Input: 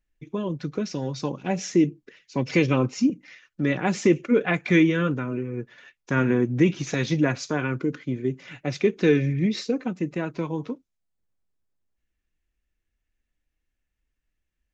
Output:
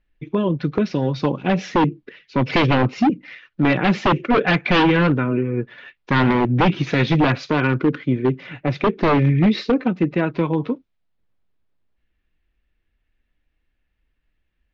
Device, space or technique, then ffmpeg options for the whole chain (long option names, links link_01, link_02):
synthesiser wavefolder: -filter_complex "[0:a]aeval=exprs='0.126*(abs(mod(val(0)/0.126+3,4)-2)-1)':channel_layout=same,lowpass=frequency=3900:width=0.5412,lowpass=frequency=3900:width=1.3066,asettb=1/sr,asplit=3[link_01][link_02][link_03];[link_01]atrim=end=8.474[link_04];[link_02]atrim=start=8.47:end=9.25,asetpts=PTS-STARTPTS,afade=type=in:duration=0.004:curve=qsin,afade=type=out:start_time=0.776:duration=0.004:curve=qsin,equalizer=frequency=3600:width=0.52:gain=-5[link_05];[link_03]atrim=start=9.246[link_06];[link_04][link_05]acrossfade=duration=0.004:curve1=hsin:curve2=qsin[link_07];[link_07][link_06]acrossfade=duration=0.004:curve1=qsin:curve2=hsin,volume=8.5dB"